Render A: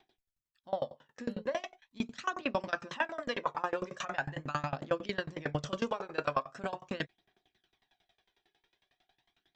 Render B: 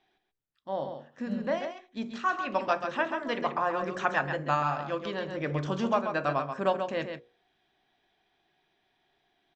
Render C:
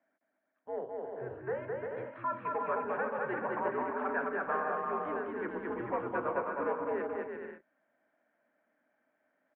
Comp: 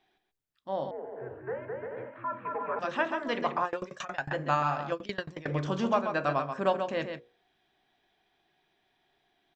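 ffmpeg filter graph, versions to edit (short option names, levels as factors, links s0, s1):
-filter_complex "[0:a]asplit=2[s0][s1];[1:a]asplit=4[s2][s3][s4][s5];[s2]atrim=end=0.912[s6];[2:a]atrim=start=0.908:end=2.792[s7];[s3]atrim=start=2.788:end=3.652[s8];[s0]atrim=start=3.648:end=4.312[s9];[s4]atrim=start=4.308:end=4.922[s10];[s1]atrim=start=4.918:end=5.482[s11];[s5]atrim=start=5.478[s12];[s6][s7]acrossfade=d=0.004:c1=hsin:c2=hsin[s13];[s13][s8]acrossfade=d=0.004:c1=hsin:c2=hsin[s14];[s14][s9]acrossfade=d=0.004:c1=hsin:c2=hsin[s15];[s15][s10]acrossfade=d=0.004:c1=hsin:c2=hsin[s16];[s16][s11]acrossfade=d=0.004:c1=hsin:c2=hsin[s17];[s17][s12]acrossfade=d=0.004:c1=hsin:c2=hsin"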